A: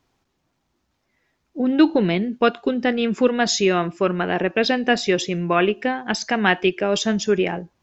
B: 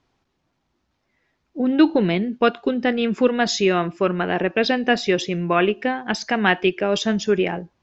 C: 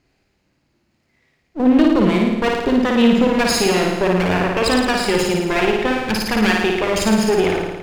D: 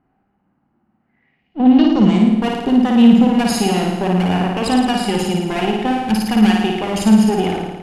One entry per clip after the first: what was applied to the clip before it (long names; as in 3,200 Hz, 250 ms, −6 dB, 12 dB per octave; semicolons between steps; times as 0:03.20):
low-pass filter 5,700 Hz 12 dB per octave
lower of the sound and its delayed copy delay 0.43 ms; brickwall limiter −13 dBFS, peak gain reduction 8 dB; on a send: flutter between parallel walls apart 9.5 metres, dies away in 1.1 s; on the sum: level +4.5 dB
low-pass filter sweep 1,300 Hz → 11,000 Hz, 0:00.98–0:02.41; hollow resonant body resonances 210/770/2,900 Hz, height 13 dB, ringing for 30 ms; level −6.5 dB